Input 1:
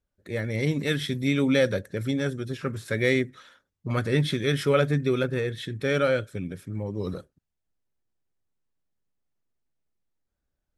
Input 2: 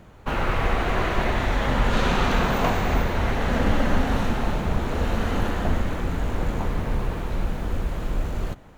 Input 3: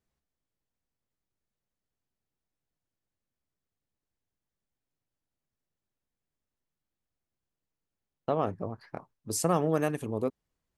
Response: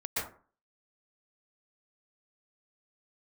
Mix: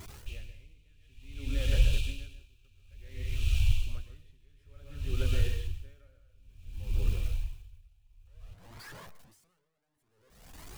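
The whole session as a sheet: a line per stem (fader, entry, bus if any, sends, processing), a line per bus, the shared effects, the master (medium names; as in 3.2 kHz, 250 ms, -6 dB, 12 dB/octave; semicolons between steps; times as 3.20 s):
-15.5 dB, 0.00 s, send -6 dB, peak limiter -15.5 dBFS, peak gain reduction 6.5 dB; band-stop 450 Hz, Q 12
0.0 dB, 0.00 s, no send, median filter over 9 samples; FFT band-reject 120–2300 Hz
-6.0 dB, 0.00 s, send -16.5 dB, one-bit comparator; Shepard-style flanger rising 1.6 Hz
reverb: on, RT60 0.40 s, pre-delay 112 ms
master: logarithmic tremolo 0.56 Hz, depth 35 dB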